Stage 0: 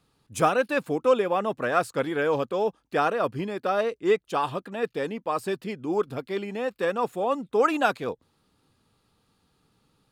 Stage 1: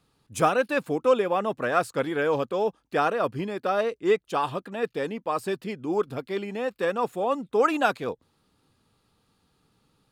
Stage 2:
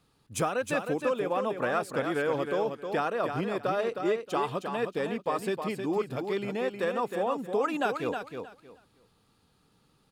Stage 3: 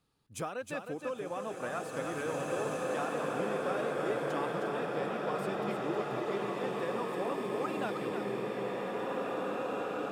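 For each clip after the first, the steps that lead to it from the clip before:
no processing that can be heard
downward compressor 4 to 1, threshold −26 dBFS, peak gain reduction 9.5 dB; repeating echo 313 ms, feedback 21%, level −6.5 dB
slow-attack reverb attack 2,340 ms, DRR −3.5 dB; level −9 dB

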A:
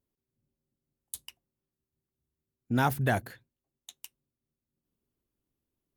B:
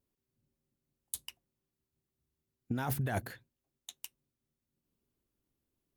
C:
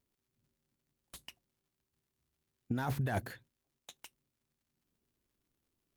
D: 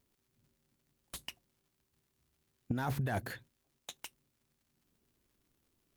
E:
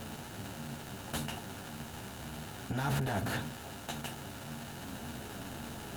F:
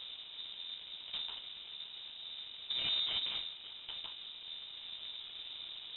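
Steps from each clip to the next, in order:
compressor whose output falls as the input rises −30 dBFS, ratio −1; level −3 dB
surface crackle 160 per second −70 dBFS; slew-rate limiting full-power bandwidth 35 Hz
downward compressor 6 to 1, threshold −37 dBFS, peak gain reduction 8 dB; level +6 dB
compressor on every frequency bin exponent 0.4; brickwall limiter −28 dBFS, peak gain reduction 10.5 dB; string-ensemble chorus; level +8 dB
running median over 25 samples; voice inversion scrambler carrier 3,800 Hz; high-shelf EQ 2,500 Hz −11 dB; level +5 dB

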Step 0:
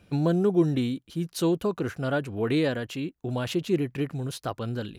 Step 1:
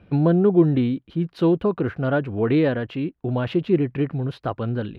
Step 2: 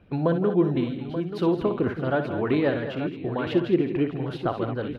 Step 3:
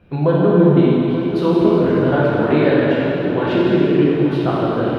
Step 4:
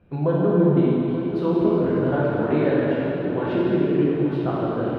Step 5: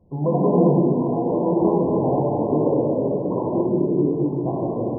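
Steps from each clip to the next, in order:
high-frequency loss of the air 410 metres; level +6.5 dB
harmonic and percussive parts rebalanced harmonic −8 dB; on a send: multi-tap delay 60/167/216/608/882 ms −9.5/−14.5/−11.5/−20/−11 dB
dense smooth reverb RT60 3 s, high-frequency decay 0.85×, DRR −6 dB; level +2.5 dB
high-shelf EQ 2,600 Hz −10 dB; level −5.5 dB
delay with pitch and tempo change per echo 155 ms, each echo +6 semitones, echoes 3, each echo −6 dB; linear-phase brick-wall low-pass 1,100 Hz

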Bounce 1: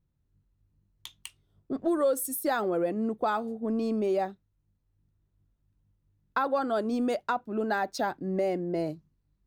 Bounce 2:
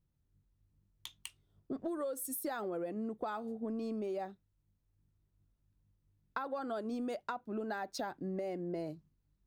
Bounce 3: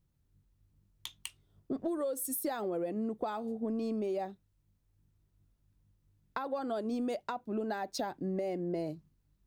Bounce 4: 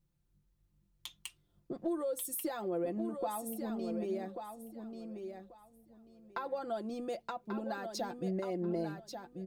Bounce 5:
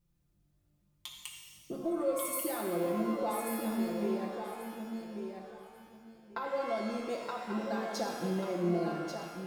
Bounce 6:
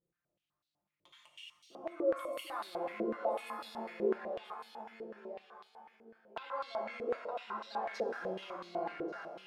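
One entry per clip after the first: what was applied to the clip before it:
downward compressor, threshold −32 dBFS, peak gain reduction 10.5 dB; level −3.5 dB
dynamic equaliser 1,400 Hz, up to −6 dB, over −57 dBFS, Q 2; level +4 dB
comb filter 5.8 ms; repeating echo 1,138 ms, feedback 20%, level −7 dB; level −4 dB
reverb with rising layers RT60 1.5 s, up +12 semitones, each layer −8 dB, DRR 0 dB
band-pass on a step sequencer 8 Hz 440–4,000 Hz; level +7 dB

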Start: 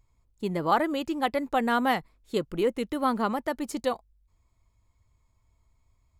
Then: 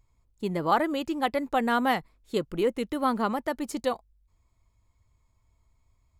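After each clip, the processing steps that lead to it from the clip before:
no processing that can be heard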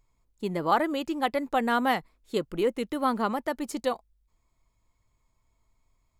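parametric band 76 Hz −12 dB 1 octave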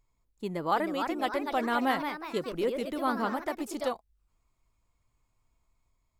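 delay with pitch and tempo change per echo 376 ms, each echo +2 semitones, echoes 3, each echo −6 dB
level −4 dB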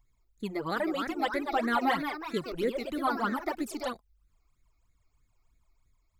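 all-pass phaser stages 12, 3.1 Hz, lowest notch 160–1,000 Hz
level +3.5 dB

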